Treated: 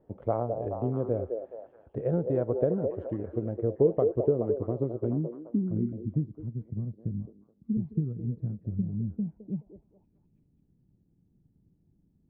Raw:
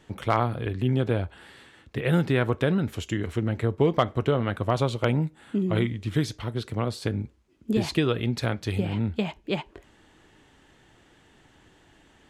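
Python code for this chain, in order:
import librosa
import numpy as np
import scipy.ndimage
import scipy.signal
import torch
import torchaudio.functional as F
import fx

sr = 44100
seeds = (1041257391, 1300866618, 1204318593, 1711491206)

y = fx.transient(x, sr, attack_db=3, sustain_db=-2)
y = fx.filter_sweep_lowpass(y, sr, from_hz=580.0, to_hz=180.0, start_s=3.45, end_s=6.68, q=2.4)
y = fx.echo_stepped(y, sr, ms=212, hz=490.0, octaves=0.7, feedback_pct=70, wet_db=-3.0)
y = y * 10.0 ** (-8.5 / 20.0)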